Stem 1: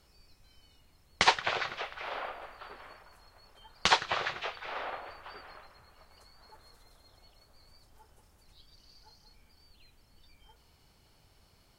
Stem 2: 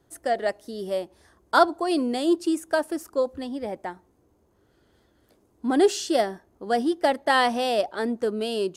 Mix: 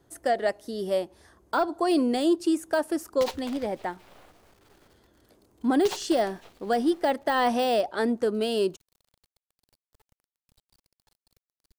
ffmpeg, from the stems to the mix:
ffmpeg -i stem1.wav -i stem2.wav -filter_complex "[0:a]equalizer=frequency=1600:width_type=o:width=2:gain=-11.5,acrusher=bits=6:dc=4:mix=0:aa=0.000001,adelay=2000,volume=-6dB[link_01];[1:a]deesser=0.75,alimiter=limit=-16.5dB:level=0:latency=1:release=184,volume=1.5dB[link_02];[link_01][link_02]amix=inputs=2:normalize=0" out.wav

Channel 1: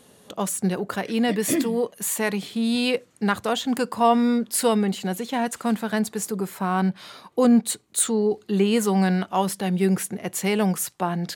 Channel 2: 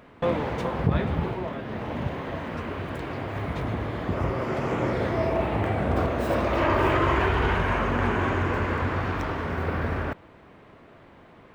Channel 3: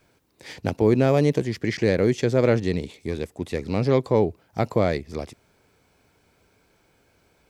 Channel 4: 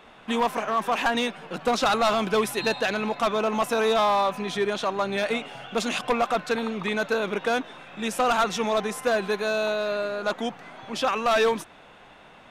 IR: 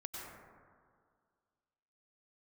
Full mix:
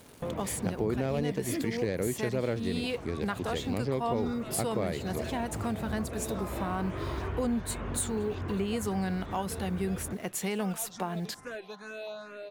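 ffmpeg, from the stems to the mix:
-filter_complex "[0:a]acrusher=bits=7:mix=0:aa=0.5,volume=-1.5dB[link_01];[1:a]lowshelf=frequency=450:gain=10,volume=-12.5dB[link_02];[2:a]volume=1.5dB[link_03];[3:a]asplit=2[link_04][link_05];[link_05]afreqshift=2.4[link_06];[link_04][link_06]amix=inputs=2:normalize=1,adelay=2400,volume=-12.5dB[link_07];[link_01][link_02][link_03][link_07]amix=inputs=4:normalize=0,acompressor=threshold=-33dB:ratio=2.5"

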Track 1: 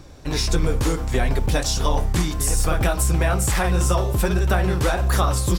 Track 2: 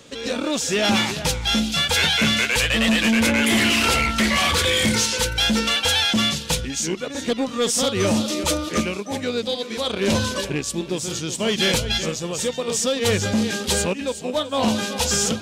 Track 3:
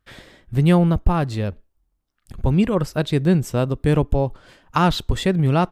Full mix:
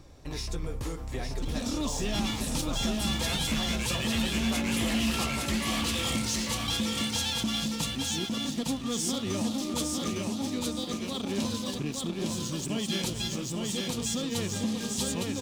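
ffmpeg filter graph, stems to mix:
ffmpeg -i stem1.wav -i stem2.wav -filter_complex "[0:a]volume=-8.5dB,asplit=2[link_01][link_02];[link_02]volume=-5.5dB[link_03];[1:a]equalizer=frequency=125:width_type=o:width=1:gain=10,equalizer=frequency=250:width_type=o:width=1:gain=11,equalizer=frequency=500:width_type=o:width=1:gain=-8,equalizer=frequency=2000:width_type=o:width=1:gain=-7,acrossover=split=390[link_04][link_05];[link_04]acompressor=threshold=-27dB:ratio=3[link_06];[link_06][link_05]amix=inputs=2:normalize=0,aeval=exprs='sgn(val(0))*max(abs(val(0))-0.0126,0)':channel_layout=same,adelay=1300,volume=-2dB,asplit=2[link_07][link_08];[link_08]volume=-3.5dB[link_09];[link_03][link_09]amix=inputs=2:normalize=0,aecho=0:1:858|1716|2574|3432:1|0.23|0.0529|0.0122[link_10];[link_01][link_07][link_10]amix=inputs=3:normalize=0,bandreject=frequency=1500:width=10,acompressor=threshold=-39dB:ratio=1.5" out.wav

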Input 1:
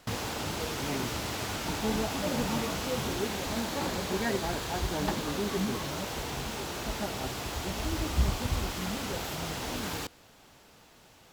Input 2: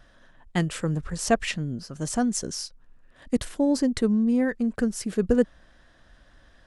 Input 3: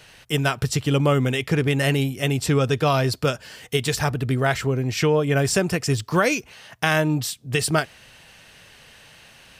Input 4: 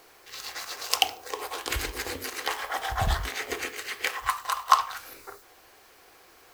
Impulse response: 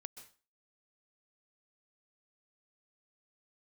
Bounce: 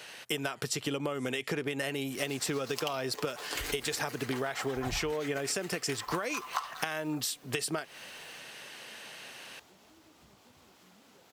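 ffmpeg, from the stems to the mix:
-filter_complex "[0:a]highpass=180,acompressor=threshold=-40dB:ratio=6,adelay=2050,volume=-17dB[link_01];[1:a]aderivative,volume=-19.5dB[link_02];[2:a]highpass=280,acompressor=threshold=-23dB:ratio=6,volume=2dB[link_03];[3:a]aecho=1:1:6.9:0.57,adelay=1850,volume=-6.5dB[link_04];[link_01][link_02][link_03][link_04]amix=inputs=4:normalize=0,acompressor=threshold=-30dB:ratio=6"

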